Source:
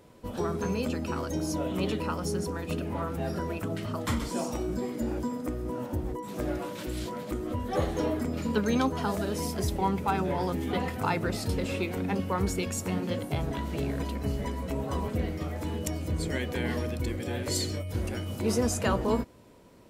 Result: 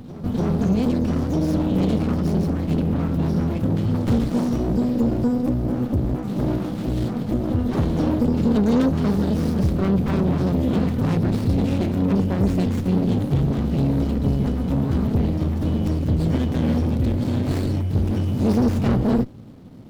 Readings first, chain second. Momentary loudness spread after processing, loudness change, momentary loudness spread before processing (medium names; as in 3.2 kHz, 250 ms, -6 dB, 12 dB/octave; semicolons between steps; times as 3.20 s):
4 LU, +9.5 dB, 6 LU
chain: graphic EQ 125/250/500/1000/2000/4000/8000 Hz +9/+8/-7/-3/-8/+5/-8 dB; saturation -22 dBFS, distortion -12 dB; reverse echo 295 ms -15.5 dB; sliding maximum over 33 samples; trim +8.5 dB